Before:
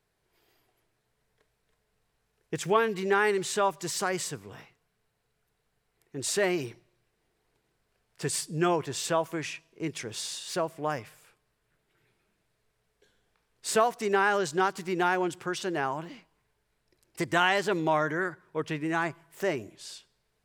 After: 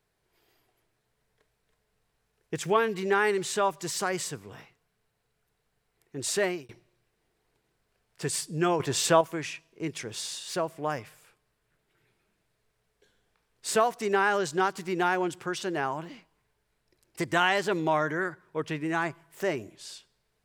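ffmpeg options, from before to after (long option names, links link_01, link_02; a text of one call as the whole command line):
ffmpeg -i in.wav -filter_complex "[0:a]asplit=4[link_01][link_02][link_03][link_04];[link_01]atrim=end=6.69,asetpts=PTS-STARTPTS,afade=type=out:start_time=6.42:duration=0.27[link_05];[link_02]atrim=start=6.69:end=8.802,asetpts=PTS-STARTPTS,afade=type=in:duration=0.004:curve=hsin[link_06];[link_03]atrim=start=8.798:end=9.212,asetpts=PTS-STARTPTS,volume=6dB[link_07];[link_04]atrim=start=9.208[link_08];[link_05][link_06]concat=n=2:v=0:a=1[link_09];[link_09][link_07]acrossfade=duration=0.004:curve1=hsin:curve2=hsin[link_10];[link_10][link_08]acrossfade=duration=0.004:curve1=hsin:curve2=hsin" out.wav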